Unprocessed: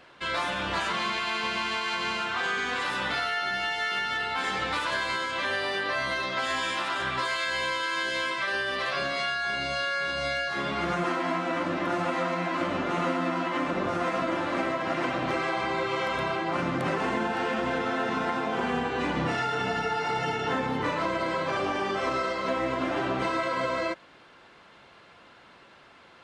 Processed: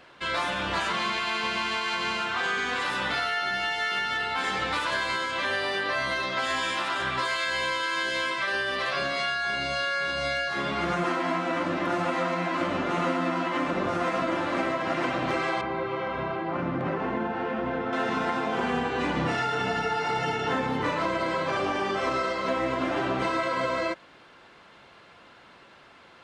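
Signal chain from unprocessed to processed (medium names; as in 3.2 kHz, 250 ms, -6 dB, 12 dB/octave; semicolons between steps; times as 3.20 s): 15.61–17.93 s: tape spacing loss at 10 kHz 31 dB; trim +1 dB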